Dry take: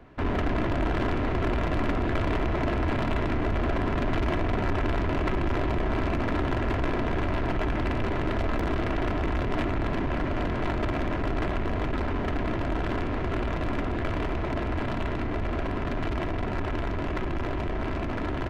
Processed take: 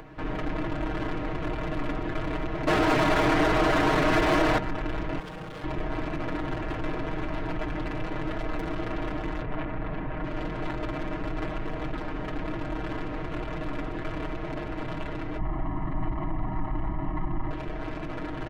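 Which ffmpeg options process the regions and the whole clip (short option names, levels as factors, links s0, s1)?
-filter_complex "[0:a]asettb=1/sr,asplit=3[s0][s1][s2];[s0]atrim=end=2.674[s3];[s1]atrim=start=2.67:end=4.58,asetpts=PTS-STARTPTS,afade=t=in:d=0.004:c=qsin,afade=t=out:st=1.906:d=0.004:c=qsin,acontrast=54,asplit=2[s4][s5];[s5]highpass=f=720:p=1,volume=35.5,asoftclip=type=tanh:threshold=0.237[s6];[s4][s6]amix=inputs=2:normalize=0,lowpass=f=2600:p=1,volume=0.501[s7];[s2]atrim=start=4.576[s8];[s3][s7]acrossfade=d=0.004:c1=hsin:c2=qsin[s9];[s9][s8]acrossfade=d=0.004:c1=qsin:c2=hsin,asettb=1/sr,asplit=3[s10][s11][s12];[s10]atrim=end=5.194[s13];[s11]atrim=start=5.19:end=5.64,asetpts=PTS-STARTPTS,afade=t=in:d=0.004:c=qsin,afade=t=out:st=0.446:d=0.004:c=qsin,lowpass=1200,aeval=exprs='0.0299*(abs(mod(val(0)/0.0299+3,4)-2)-1)':c=same[s14];[s12]atrim=start=5.636[s15];[s13][s14]acrossfade=d=0.004:c1=hsin:c2=qsin[s16];[s16][s15]acrossfade=d=0.004:c1=qsin:c2=hsin,asettb=1/sr,asplit=3[s17][s18][s19];[s17]atrim=end=9.414[s20];[s18]atrim=start=9.41:end=10.24,asetpts=PTS-STARTPTS,afade=t=in:d=0.004:c=qsin,afade=t=out:st=0.826:d=0.004:c=qsin,lowpass=2400,equalizer=f=340:w=3.9:g=-5[s21];[s19]atrim=start=10.236[s22];[s20][s21]acrossfade=d=0.004:c1=hsin:c2=qsin[s23];[s23][s22]acrossfade=d=0.004:c1=qsin:c2=hsin,asettb=1/sr,asplit=3[s24][s25][s26];[s24]atrim=end=15.384[s27];[s25]atrim=start=15.38:end=17.51,asetpts=PTS-STARTPTS,afade=t=in:d=0.004:c=qsin,afade=t=out:st=2.126:d=0.004:c=qsin,lowpass=1300,aecho=1:1:1:1,atrim=end_sample=93933[s28];[s26]atrim=start=17.506[s29];[s27][s28]acrossfade=d=0.004:c1=hsin:c2=qsin[s30];[s30][s29]acrossfade=d=0.004:c1=qsin:c2=hsin,aecho=1:1:6.4:0.92,acompressor=mode=upward:threshold=0.0316:ratio=2.5,volume=0.473"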